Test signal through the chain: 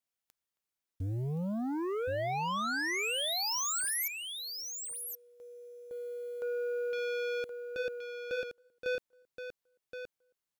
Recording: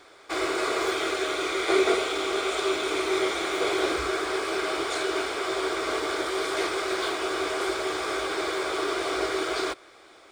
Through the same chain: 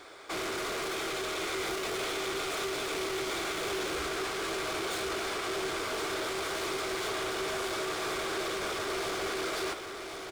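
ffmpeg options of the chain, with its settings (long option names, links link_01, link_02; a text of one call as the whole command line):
ffmpeg -i in.wav -filter_complex "[0:a]acrusher=bits=6:mode=log:mix=0:aa=0.000001,asoftclip=type=tanh:threshold=-27.5dB,asplit=2[link_01][link_02];[link_02]adelay=270,highpass=300,lowpass=3400,asoftclip=type=hard:threshold=-37dB,volume=-30dB[link_03];[link_01][link_03]amix=inputs=2:normalize=0,aeval=exprs='0.0447*sin(PI/2*1.58*val(0)/0.0447)':channel_layout=same,asplit=2[link_04][link_05];[link_05]aecho=0:1:1072:0.447[link_06];[link_04][link_06]amix=inputs=2:normalize=0,volume=-5.5dB" out.wav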